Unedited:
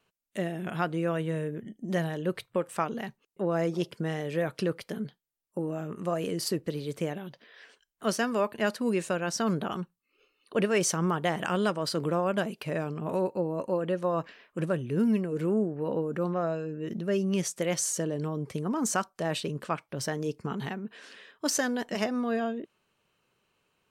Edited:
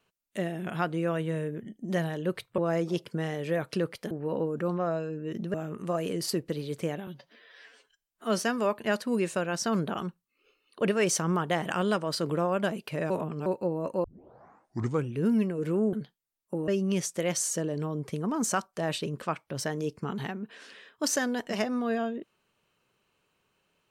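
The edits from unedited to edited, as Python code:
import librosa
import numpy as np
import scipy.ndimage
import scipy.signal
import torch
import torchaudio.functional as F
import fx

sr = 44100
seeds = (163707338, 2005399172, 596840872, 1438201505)

y = fx.edit(x, sr, fx.cut(start_s=2.58, length_s=0.86),
    fx.swap(start_s=4.97, length_s=0.75, other_s=15.67, other_length_s=1.43),
    fx.stretch_span(start_s=7.25, length_s=0.88, factor=1.5),
    fx.reverse_span(start_s=12.84, length_s=0.36),
    fx.tape_start(start_s=13.78, length_s=1.1), tone=tone)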